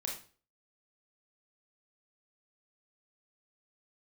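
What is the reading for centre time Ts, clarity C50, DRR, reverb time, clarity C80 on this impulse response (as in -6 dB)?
31 ms, 5.0 dB, -1.5 dB, 0.40 s, 11.0 dB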